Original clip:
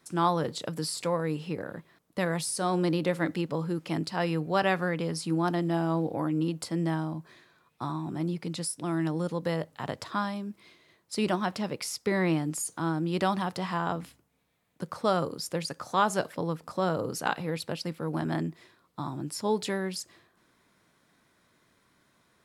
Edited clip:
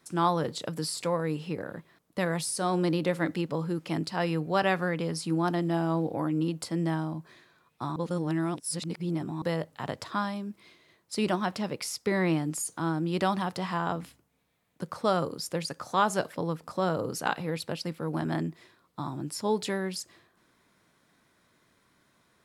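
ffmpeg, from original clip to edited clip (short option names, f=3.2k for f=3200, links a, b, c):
-filter_complex "[0:a]asplit=3[a][b][c];[a]atrim=end=7.962[d];[b]atrim=start=7.958:end=9.422,asetpts=PTS-STARTPTS,areverse[e];[c]atrim=start=9.418[f];[d][e]acrossfade=d=0.004:c1=hsin:c2=hsin[g];[g][f]acrossfade=d=0.004:c1=hsin:c2=hsin"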